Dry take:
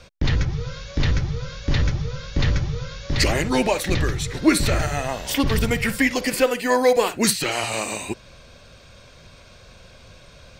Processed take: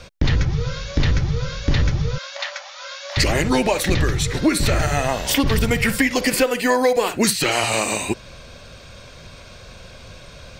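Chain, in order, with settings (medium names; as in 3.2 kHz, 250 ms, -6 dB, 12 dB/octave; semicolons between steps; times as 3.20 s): compression 6:1, threshold -20 dBFS, peak gain reduction 9.5 dB; 2.18–3.17 s: brick-wall FIR high-pass 530 Hz; trim +6 dB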